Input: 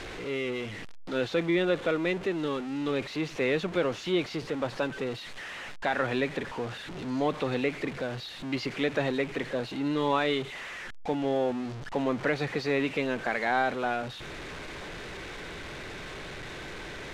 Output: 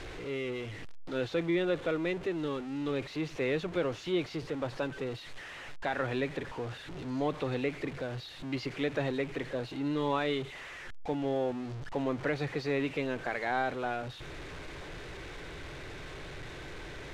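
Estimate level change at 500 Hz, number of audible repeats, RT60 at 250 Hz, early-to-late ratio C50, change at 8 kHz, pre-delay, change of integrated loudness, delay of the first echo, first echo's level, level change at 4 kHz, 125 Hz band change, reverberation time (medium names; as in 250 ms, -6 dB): -3.5 dB, no echo, no reverb, no reverb, -5.5 dB, no reverb, -4.0 dB, no echo, no echo, -5.5 dB, -1.0 dB, no reverb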